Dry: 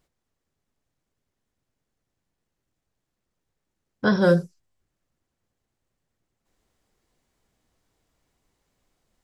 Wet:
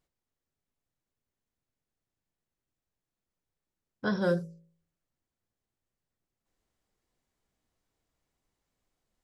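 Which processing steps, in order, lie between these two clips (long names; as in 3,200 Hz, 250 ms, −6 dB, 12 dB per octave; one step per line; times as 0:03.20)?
hum removal 55.39 Hz, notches 11
level −9 dB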